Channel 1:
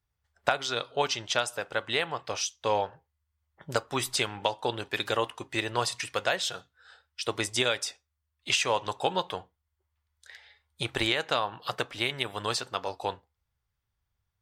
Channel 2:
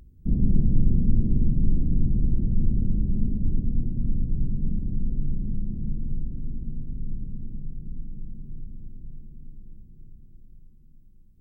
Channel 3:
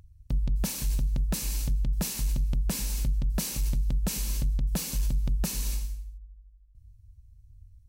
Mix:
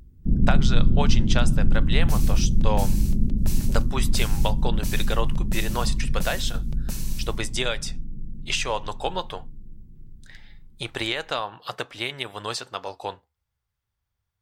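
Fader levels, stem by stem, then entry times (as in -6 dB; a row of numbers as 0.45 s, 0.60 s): 0.0 dB, +2.0 dB, -3.5 dB; 0.00 s, 0.00 s, 1.45 s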